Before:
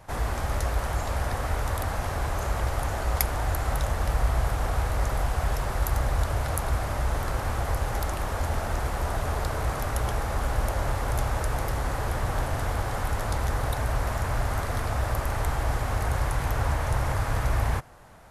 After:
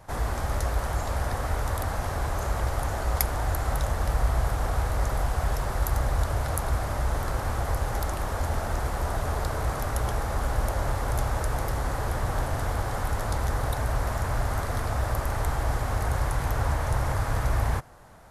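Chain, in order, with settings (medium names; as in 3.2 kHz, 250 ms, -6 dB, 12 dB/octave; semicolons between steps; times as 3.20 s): peaking EQ 2.6 kHz -3.5 dB 0.77 oct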